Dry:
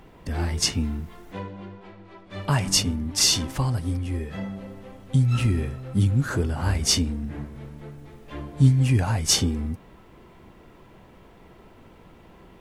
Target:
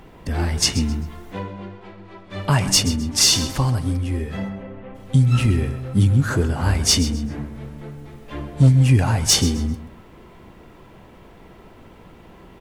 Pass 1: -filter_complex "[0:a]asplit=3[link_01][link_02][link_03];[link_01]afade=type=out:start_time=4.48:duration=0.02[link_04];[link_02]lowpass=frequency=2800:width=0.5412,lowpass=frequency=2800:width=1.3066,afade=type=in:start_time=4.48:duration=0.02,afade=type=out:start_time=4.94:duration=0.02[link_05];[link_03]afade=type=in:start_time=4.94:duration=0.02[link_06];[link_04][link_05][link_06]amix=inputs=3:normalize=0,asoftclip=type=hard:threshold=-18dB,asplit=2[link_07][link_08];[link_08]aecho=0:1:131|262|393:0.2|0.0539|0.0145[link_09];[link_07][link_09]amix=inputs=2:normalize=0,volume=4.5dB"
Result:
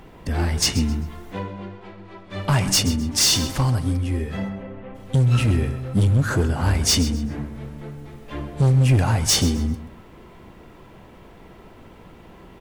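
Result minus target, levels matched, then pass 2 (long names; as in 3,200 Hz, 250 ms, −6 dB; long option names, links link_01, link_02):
hard clipping: distortion +12 dB
-filter_complex "[0:a]asplit=3[link_01][link_02][link_03];[link_01]afade=type=out:start_time=4.48:duration=0.02[link_04];[link_02]lowpass=frequency=2800:width=0.5412,lowpass=frequency=2800:width=1.3066,afade=type=in:start_time=4.48:duration=0.02,afade=type=out:start_time=4.94:duration=0.02[link_05];[link_03]afade=type=in:start_time=4.94:duration=0.02[link_06];[link_04][link_05][link_06]amix=inputs=3:normalize=0,asoftclip=type=hard:threshold=-11.5dB,asplit=2[link_07][link_08];[link_08]aecho=0:1:131|262|393:0.2|0.0539|0.0145[link_09];[link_07][link_09]amix=inputs=2:normalize=0,volume=4.5dB"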